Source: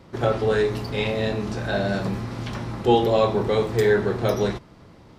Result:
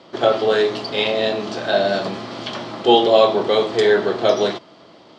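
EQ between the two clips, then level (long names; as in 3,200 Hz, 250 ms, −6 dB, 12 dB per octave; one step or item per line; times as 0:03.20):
loudspeaker in its box 260–7,700 Hz, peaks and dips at 330 Hz +3 dB, 650 Hz +8 dB, 1,200 Hz +3 dB, 3,200 Hz +10 dB, 4,500 Hz +7 dB
+3.0 dB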